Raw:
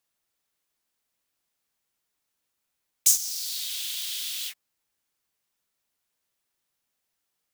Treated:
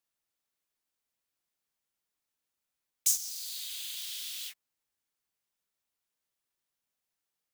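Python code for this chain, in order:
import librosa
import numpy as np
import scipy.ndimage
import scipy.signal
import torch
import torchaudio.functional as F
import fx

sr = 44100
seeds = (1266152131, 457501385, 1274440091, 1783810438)

y = fx.notch(x, sr, hz=5500.0, q=11.0, at=(3.3, 3.97))
y = y * 10.0 ** (-7.0 / 20.0)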